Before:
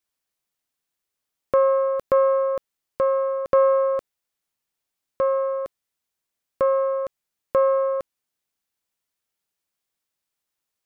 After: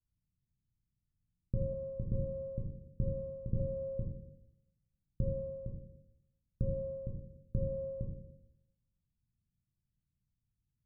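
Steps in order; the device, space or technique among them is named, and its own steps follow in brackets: club heard from the street (peak limiter -16.5 dBFS, peak gain reduction 7 dB; low-pass 160 Hz 24 dB/octave; reverberation RT60 0.85 s, pre-delay 9 ms, DRR -3 dB); 1.73–3.60 s: band-stop 570 Hz, Q 12; trim +15.5 dB

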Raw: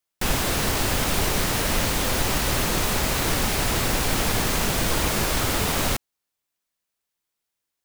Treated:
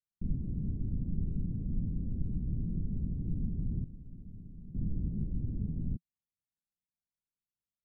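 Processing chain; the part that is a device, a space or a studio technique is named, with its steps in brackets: the neighbour's flat through the wall (low-pass 230 Hz 24 dB/octave; peaking EQ 170 Hz +4 dB 0.4 oct); 3.84–4.75 s: pre-emphasis filter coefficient 0.8; trim -6.5 dB

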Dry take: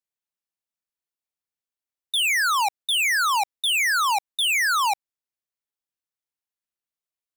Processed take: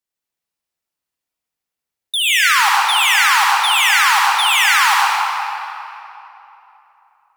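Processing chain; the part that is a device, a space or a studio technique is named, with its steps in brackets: tunnel (flutter echo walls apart 10.9 m, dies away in 0.29 s; reverberation RT60 3.2 s, pre-delay 67 ms, DRR -4.5 dB); trim +3.5 dB

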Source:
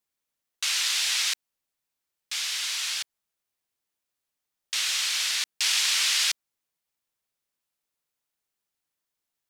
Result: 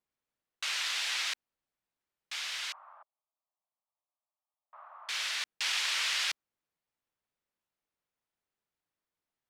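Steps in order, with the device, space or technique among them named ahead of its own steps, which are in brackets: through cloth (treble shelf 3.7 kHz -15 dB); 2.72–5.09 s: Chebyshev band-pass 600–1200 Hz, order 3

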